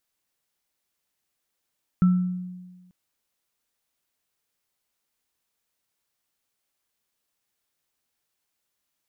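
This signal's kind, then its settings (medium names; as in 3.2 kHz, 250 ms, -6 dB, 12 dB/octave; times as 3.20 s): sine partials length 0.89 s, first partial 181 Hz, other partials 1.33 kHz, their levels -18.5 dB, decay 1.34 s, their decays 0.49 s, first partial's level -13 dB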